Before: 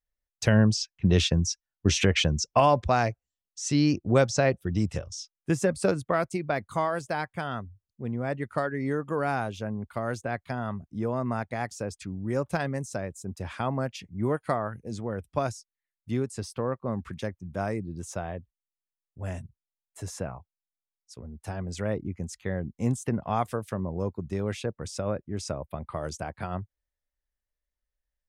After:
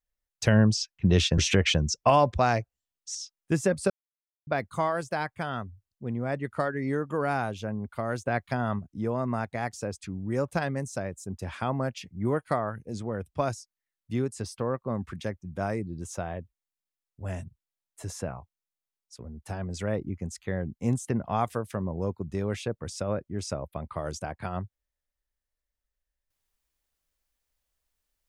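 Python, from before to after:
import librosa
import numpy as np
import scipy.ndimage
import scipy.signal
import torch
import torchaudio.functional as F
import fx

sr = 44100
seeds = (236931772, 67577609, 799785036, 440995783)

y = fx.edit(x, sr, fx.cut(start_s=1.38, length_s=0.5),
    fx.cut(start_s=3.65, length_s=1.48),
    fx.silence(start_s=5.88, length_s=0.57),
    fx.clip_gain(start_s=10.25, length_s=0.52, db=3.5), tone=tone)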